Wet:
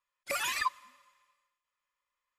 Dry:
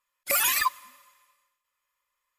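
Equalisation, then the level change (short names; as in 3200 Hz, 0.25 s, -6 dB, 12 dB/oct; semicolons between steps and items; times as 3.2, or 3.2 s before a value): air absorption 63 m; -5.0 dB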